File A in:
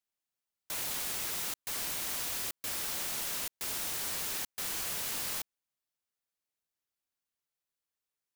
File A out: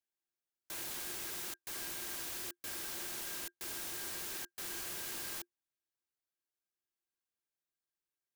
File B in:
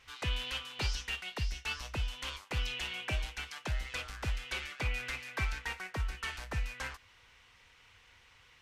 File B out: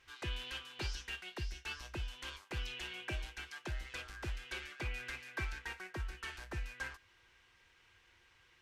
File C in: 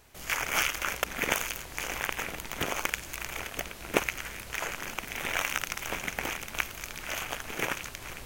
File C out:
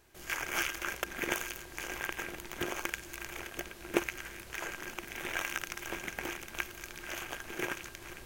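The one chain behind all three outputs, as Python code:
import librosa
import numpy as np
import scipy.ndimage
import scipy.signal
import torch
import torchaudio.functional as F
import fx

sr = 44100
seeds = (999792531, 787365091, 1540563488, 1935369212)

y = fx.small_body(x, sr, hz=(350.0, 1600.0), ring_ms=95, db=13)
y = y * 10.0 ** (-6.5 / 20.0)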